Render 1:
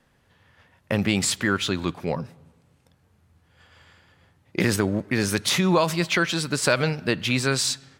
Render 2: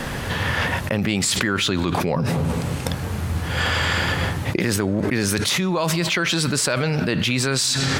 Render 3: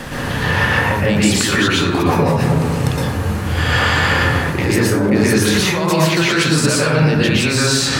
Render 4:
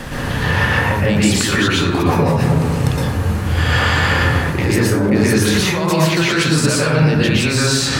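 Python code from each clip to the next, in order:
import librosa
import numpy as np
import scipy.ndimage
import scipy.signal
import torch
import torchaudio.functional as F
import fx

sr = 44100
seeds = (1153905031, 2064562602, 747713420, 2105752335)

y1 = fx.env_flatten(x, sr, amount_pct=100)
y1 = F.gain(torch.from_numpy(y1), -4.0).numpy()
y2 = fx.rev_plate(y1, sr, seeds[0], rt60_s=0.87, hf_ratio=0.4, predelay_ms=105, drr_db=-7.0)
y2 = F.gain(torch.from_numpy(y2), -1.0).numpy()
y3 = fx.low_shelf(y2, sr, hz=95.0, db=6.0)
y3 = F.gain(torch.from_numpy(y3), -1.0).numpy()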